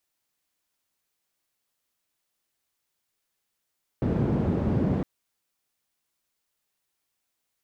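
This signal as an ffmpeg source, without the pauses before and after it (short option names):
-f lavfi -i "anoisesrc=c=white:d=1.01:r=44100:seed=1,highpass=f=82,lowpass=f=220,volume=1.8dB"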